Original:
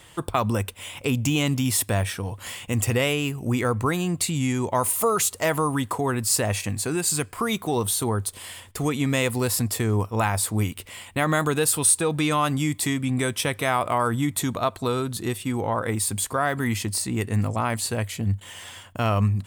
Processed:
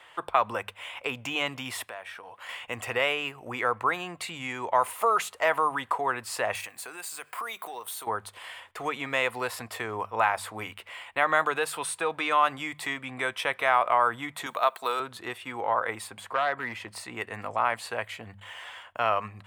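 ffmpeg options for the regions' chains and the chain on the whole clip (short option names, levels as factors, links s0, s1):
-filter_complex "[0:a]asettb=1/sr,asplit=3[s0][s1][s2];[s0]atrim=end=1.854[s3];[s1]atrim=start=1.85:end=2.49,asetpts=PTS-STARTPTS,afade=t=in:d=0.004:c=qsin,afade=t=out:st=0.636:d=0.004:c=qsin,highpass=f=300:p=1,acompressor=threshold=0.0141:ratio=3:attack=3.2:release=140:knee=1:detection=peak[s4];[s2]atrim=start=2.486[s5];[s3][s4]acrossfade=d=0.004:c1=hsin:c2=qsin[s6];[s6][s5]acrossfade=d=0.004:c1=qsin:c2=hsin,asettb=1/sr,asplit=3[s7][s8][s9];[s7]atrim=end=6.554[s10];[s8]atrim=start=6.55:end=8.07,asetpts=PTS-STARTPTS,afade=t=in:d=0.004:c=qsin,afade=t=out:st=1.516:d=0.004:c=qsin,acompressor=threshold=0.0316:ratio=5:attack=3.2:release=140:knee=1:detection=peak,aemphasis=mode=production:type=bsi,acrusher=bits=8:mode=log:mix=0:aa=0.000001[s11];[s9]atrim=start=8.066[s12];[s10][s11]acrossfade=d=0.004:c1=hsin:c2=qsin[s13];[s13][s12]acrossfade=d=0.004:c1=qsin:c2=hsin,asettb=1/sr,asplit=3[s14][s15][s16];[s14]atrim=end=14.464[s17];[s15]atrim=start=14.46:end=15,asetpts=PTS-STARTPTS,afade=t=in:d=0.004:c=qsin,afade=t=out:st=0.536:d=0.004:c=qsin,highpass=140,aemphasis=mode=production:type=bsi[s18];[s16]atrim=start=14.996[s19];[s17][s18]acrossfade=d=0.004:c1=hsin:c2=qsin[s20];[s20][s19]acrossfade=d=0.004:c1=qsin:c2=hsin,asettb=1/sr,asplit=3[s21][s22][s23];[s21]atrim=end=16.074[s24];[s22]atrim=start=16.07:end=16.96,asetpts=PTS-STARTPTS,afade=t=in:d=0.004:c=qsin,afade=t=out:st=0.886:d=0.004:c=qsin,highshelf=f=2700:g=-8,aeval=exprs='0.133*(abs(mod(val(0)/0.133+3,4)-2)-1)':c=same[s25];[s23]atrim=start=16.956[s26];[s24][s25]acrossfade=d=0.004:c1=hsin:c2=qsin[s27];[s27][s26]acrossfade=d=0.004:c1=qsin:c2=hsin,acrossover=split=550 3000:gain=0.0708 1 0.112[s28][s29][s30];[s28][s29][s30]amix=inputs=3:normalize=0,bandreject=f=50:t=h:w=6,bandreject=f=100:t=h:w=6,bandreject=f=150:t=h:w=6,bandreject=f=200:t=h:w=6,volume=1.33"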